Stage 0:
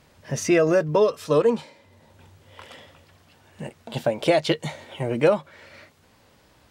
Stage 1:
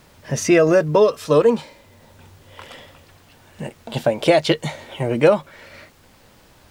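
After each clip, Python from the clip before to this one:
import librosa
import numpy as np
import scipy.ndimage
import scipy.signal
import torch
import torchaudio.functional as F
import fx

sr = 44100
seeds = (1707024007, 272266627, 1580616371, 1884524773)

y = fx.dmg_noise_colour(x, sr, seeds[0], colour='pink', level_db=-61.0)
y = y * librosa.db_to_amplitude(4.5)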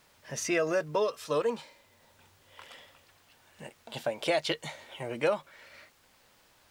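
y = fx.low_shelf(x, sr, hz=480.0, db=-11.5)
y = y * librosa.db_to_amplitude(-8.5)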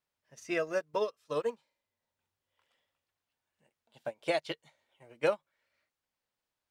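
y = fx.upward_expand(x, sr, threshold_db=-41.0, expansion=2.5)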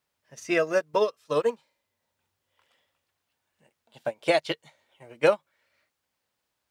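y = scipy.signal.sosfilt(scipy.signal.butter(2, 40.0, 'highpass', fs=sr, output='sos'), x)
y = y * librosa.db_to_amplitude(8.0)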